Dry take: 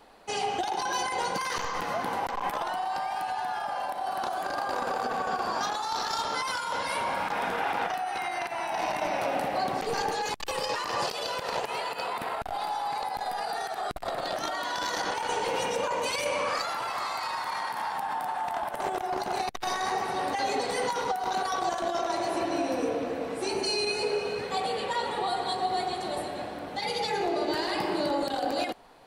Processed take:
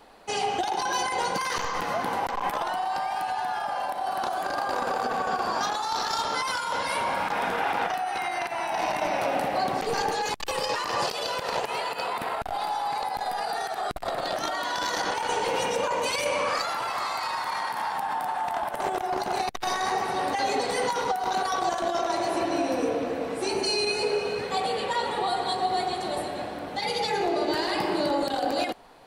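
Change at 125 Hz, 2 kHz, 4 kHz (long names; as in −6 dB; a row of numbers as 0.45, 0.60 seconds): +2.5, +2.5, +2.5 decibels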